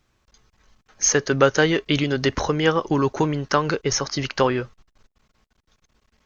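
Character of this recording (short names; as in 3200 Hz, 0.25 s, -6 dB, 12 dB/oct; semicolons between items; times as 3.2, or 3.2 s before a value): noise floor -72 dBFS; spectral tilt -4.0 dB/oct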